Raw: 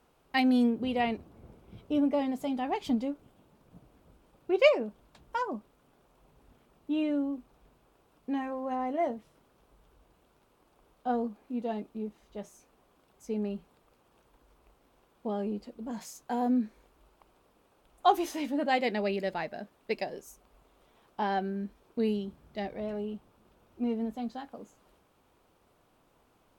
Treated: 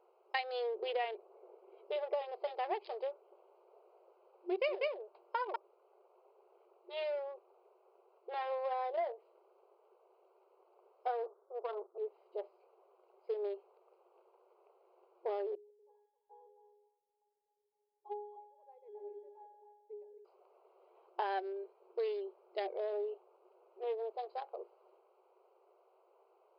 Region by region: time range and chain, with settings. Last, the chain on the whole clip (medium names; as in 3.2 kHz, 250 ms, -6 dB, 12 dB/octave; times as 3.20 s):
3.13–5.56 s: peaking EQ 260 Hz -8.5 dB 0.68 oct + delay 193 ms -3.5 dB
11.26–11.98 s: comb filter that takes the minimum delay 0.6 ms + low-pass 1.3 kHz 24 dB/octave + bass shelf 150 Hz -10.5 dB
15.55–20.25 s: pitch-class resonator G#, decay 0.78 s + thinning echo 264 ms, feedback 30%, high-pass 700 Hz, level -8 dB
whole clip: local Wiener filter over 25 samples; FFT band-pass 350–5200 Hz; compression 5:1, threshold -37 dBFS; trim +3.5 dB